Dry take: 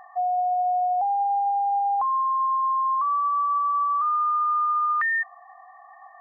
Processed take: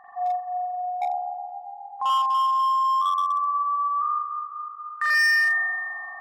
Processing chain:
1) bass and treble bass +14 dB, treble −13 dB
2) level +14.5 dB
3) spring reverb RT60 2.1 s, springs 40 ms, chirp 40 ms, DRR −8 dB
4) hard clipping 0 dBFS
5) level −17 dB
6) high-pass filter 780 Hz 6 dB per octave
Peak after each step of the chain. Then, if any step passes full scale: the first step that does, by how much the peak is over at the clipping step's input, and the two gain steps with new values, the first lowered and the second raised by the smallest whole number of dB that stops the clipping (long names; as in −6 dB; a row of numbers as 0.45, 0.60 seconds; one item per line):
−19.0, −4.5, +8.5, 0.0, −17.0, −14.5 dBFS
step 3, 8.5 dB
step 2 +5.5 dB, step 5 −8 dB